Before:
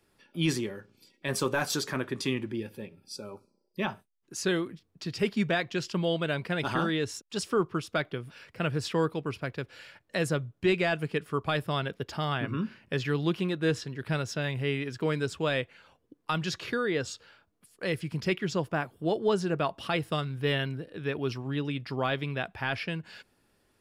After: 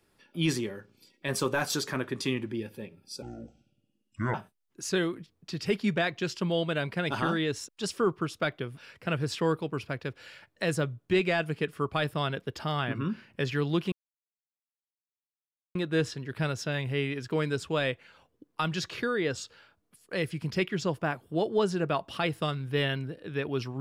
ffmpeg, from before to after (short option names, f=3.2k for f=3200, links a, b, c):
-filter_complex "[0:a]asplit=4[a][b][c][d];[a]atrim=end=3.224[e];[b]atrim=start=3.22:end=3.87,asetpts=PTS-STARTPTS,asetrate=25578,aresample=44100,atrim=end_sample=49422,asetpts=PTS-STARTPTS[f];[c]atrim=start=3.866:end=13.45,asetpts=PTS-STARTPTS,afade=t=out:st=9.58:d=0.004:c=hsin,apad=pad_dur=1.83[g];[d]atrim=start=13.45,asetpts=PTS-STARTPTS,afade=t=in:d=0.004:c=hsin[h];[e][f]acrossfade=d=0.004:c1=hsin:c2=hsin[i];[g][h]concat=n=2:v=0:a=1[j];[i][j]acrossfade=d=0.004:c1=hsin:c2=hsin"